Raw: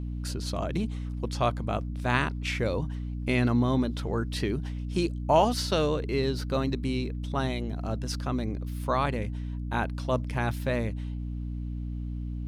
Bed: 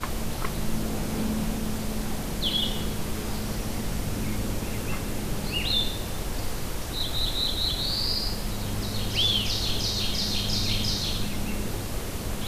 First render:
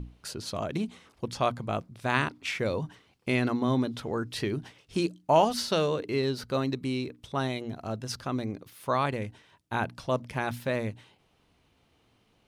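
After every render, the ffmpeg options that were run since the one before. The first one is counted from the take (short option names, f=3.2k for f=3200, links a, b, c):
-af "bandreject=f=60:t=h:w=6,bandreject=f=120:t=h:w=6,bandreject=f=180:t=h:w=6,bandreject=f=240:t=h:w=6,bandreject=f=300:t=h:w=6"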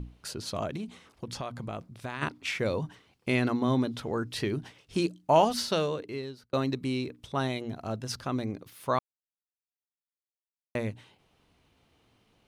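-filter_complex "[0:a]asplit=3[a][b][c];[a]afade=t=out:st=0.69:d=0.02[d];[b]acompressor=threshold=-32dB:ratio=6:attack=3.2:release=140:knee=1:detection=peak,afade=t=in:st=0.69:d=0.02,afade=t=out:st=2.21:d=0.02[e];[c]afade=t=in:st=2.21:d=0.02[f];[d][e][f]amix=inputs=3:normalize=0,asplit=4[g][h][i][j];[g]atrim=end=6.53,asetpts=PTS-STARTPTS,afade=t=out:st=5.63:d=0.9[k];[h]atrim=start=6.53:end=8.99,asetpts=PTS-STARTPTS,afade=t=in:d=0.004:c=hsin,afade=t=out:st=2.456:d=0.004:c=hsin[l];[i]atrim=start=8.99:end=10.75,asetpts=PTS-STARTPTS,volume=0[m];[j]atrim=start=10.75,asetpts=PTS-STARTPTS,afade=t=in:d=0.004:c=hsin[n];[k][l][m][n]concat=n=4:v=0:a=1"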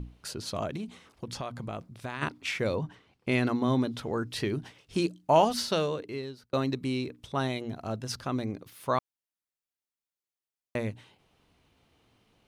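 -filter_complex "[0:a]asettb=1/sr,asplit=3[a][b][c];[a]atrim=end=2.754[d];[b]atrim=start=2.75:end=3.32,asetpts=PTS-STARTPTS,afade=t=in:d=0.004:c=qsin,afade=t=out:st=0.566:d=0.004:c=qsin,aemphasis=mode=reproduction:type=cd[e];[c]atrim=start=3.316[f];[d][e]acrossfade=d=0.004:c1=hsin:c2=qsin[g];[g][f]acrossfade=d=0.004:c1=qsin:c2=hsin"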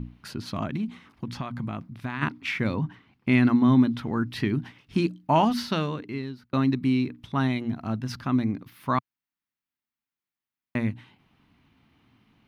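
-af "equalizer=f=125:t=o:w=1:g=5,equalizer=f=250:t=o:w=1:g=10,equalizer=f=500:t=o:w=1:g=-9,equalizer=f=1k:t=o:w=1:g=4,equalizer=f=2k:t=o:w=1:g=5,equalizer=f=8k:t=o:w=1:g=-10"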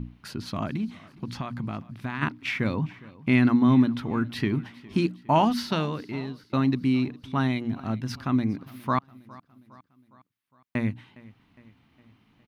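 -af "aecho=1:1:410|820|1230|1640:0.0841|0.0463|0.0255|0.014"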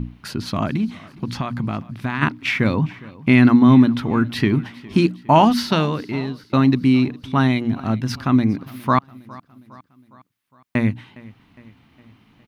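-af "volume=8dB,alimiter=limit=-3dB:level=0:latency=1"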